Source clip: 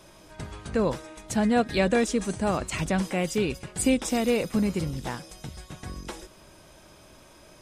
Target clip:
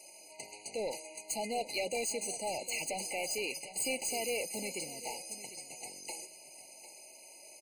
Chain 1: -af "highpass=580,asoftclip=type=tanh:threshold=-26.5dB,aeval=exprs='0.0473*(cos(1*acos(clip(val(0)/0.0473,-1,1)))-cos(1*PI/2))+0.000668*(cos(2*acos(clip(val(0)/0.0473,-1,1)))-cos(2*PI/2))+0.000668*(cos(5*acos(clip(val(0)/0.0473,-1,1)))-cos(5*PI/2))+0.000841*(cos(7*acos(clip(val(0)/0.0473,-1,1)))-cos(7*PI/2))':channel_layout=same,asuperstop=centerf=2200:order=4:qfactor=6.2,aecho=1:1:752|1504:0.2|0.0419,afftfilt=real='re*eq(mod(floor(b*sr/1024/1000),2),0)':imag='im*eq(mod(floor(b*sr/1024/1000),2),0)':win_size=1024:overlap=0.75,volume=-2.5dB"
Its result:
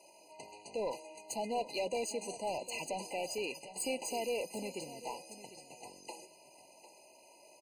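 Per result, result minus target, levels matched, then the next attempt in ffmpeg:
8,000 Hz band −5.0 dB; 2,000 Hz band −3.0 dB
-af "highpass=580,equalizer=frequency=9900:width_type=o:width=2.1:gain=12.5,asoftclip=type=tanh:threshold=-26.5dB,aeval=exprs='0.0473*(cos(1*acos(clip(val(0)/0.0473,-1,1)))-cos(1*PI/2))+0.000668*(cos(2*acos(clip(val(0)/0.0473,-1,1)))-cos(2*PI/2))+0.000668*(cos(5*acos(clip(val(0)/0.0473,-1,1)))-cos(5*PI/2))+0.000841*(cos(7*acos(clip(val(0)/0.0473,-1,1)))-cos(7*PI/2))':channel_layout=same,asuperstop=centerf=2200:order=4:qfactor=6.2,aecho=1:1:752|1504:0.2|0.0419,afftfilt=real='re*eq(mod(floor(b*sr/1024/1000),2),0)':imag='im*eq(mod(floor(b*sr/1024/1000),2),0)':win_size=1024:overlap=0.75,volume=-2.5dB"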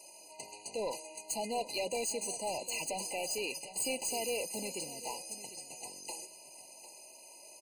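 2,000 Hz band −2.5 dB
-af "highpass=580,equalizer=frequency=9900:width_type=o:width=2.1:gain=12.5,asoftclip=type=tanh:threshold=-26.5dB,aeval=exprs='0.0473*(cos(1*acos(clip(val(0)/0.0473,-1,1)))-cos(1*PI/2))+0.000668*(cos(2*acos(clip(val(0)/0.0473,-1,1)))-cos(2*PI/2))+0.000668*(cos(5*acos(clip(val(0)/0.0473,-1,1)))-cos(5*PI/2))+0.000841*(cos(7*acos(clip(val(0)/0.0473,-1,1)))-cos(7*PI/2))':channel_layout=same,asuperstop=centerf=1000:order=4:qfactor=6.2,aecho=1:1:752|1504:0.2|0.0419,afftfilt=real='re*eq(mod(floor(b*sr/1024/1000),2),0)':imag='im*eq(mod(floor(b*sr/1024/1000),2),0)':win_size=1024:overlap=0.75,volume=-2.5dB"

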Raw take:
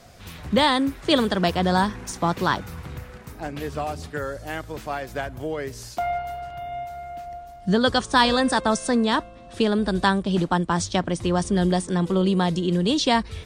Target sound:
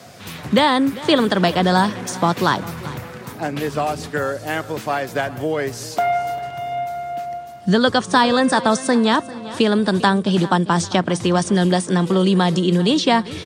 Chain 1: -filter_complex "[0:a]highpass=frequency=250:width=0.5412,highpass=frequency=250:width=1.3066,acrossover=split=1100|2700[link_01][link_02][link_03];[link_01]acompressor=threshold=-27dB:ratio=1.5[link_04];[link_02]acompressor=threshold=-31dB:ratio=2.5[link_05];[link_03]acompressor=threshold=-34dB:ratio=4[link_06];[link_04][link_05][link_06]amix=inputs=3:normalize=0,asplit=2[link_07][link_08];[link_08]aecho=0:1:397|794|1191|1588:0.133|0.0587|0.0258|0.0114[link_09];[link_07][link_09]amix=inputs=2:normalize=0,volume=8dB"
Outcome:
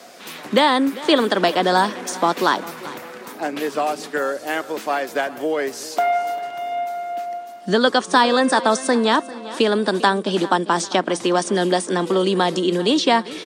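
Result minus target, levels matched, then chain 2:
125 Hz band −9.5 dB
-filter_complex "[0:a]highpass=frequency=110:width=0.5412,highpass=frequency=110:width=1.3066,acrossover=split=1100|2700[link_01][link_02][link_03];[link_01]acompressor=threshold=-27dB:ratio=1.5[link_04];[link_02]acompressor=threshold=-31dB:ratio=2.5[link_05];[link_03]acompressor=threshold=-34dB:ratio=4[link_06];[link_04][link_05][link_06]amix=inputs=3:normalize=0,asplit=2[link_07][link_08];[link_08]aecho=0:1:397|794|1191|1588:0.133|0.0587|0.0258|0.0114[link_09];[link_07][link_09]amix=inputs=2:normalize=0,volume=8dB"

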